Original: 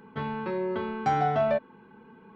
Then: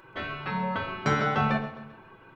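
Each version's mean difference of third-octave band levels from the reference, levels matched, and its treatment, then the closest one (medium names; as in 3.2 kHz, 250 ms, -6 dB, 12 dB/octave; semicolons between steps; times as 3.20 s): 6.5 dB: spectral gate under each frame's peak -10 dB weak; feedback delay 131 ms, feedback 46%, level -14.5 dB; simulated room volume 2000 m³, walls furnished, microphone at 1.1 m; trim +7 dB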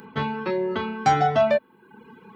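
2.5 dB: reverb removal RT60 0.87 s; high-pass 41 Hz; treble shelf 3.7 kHz +12 dB; trim +6.5 dB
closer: second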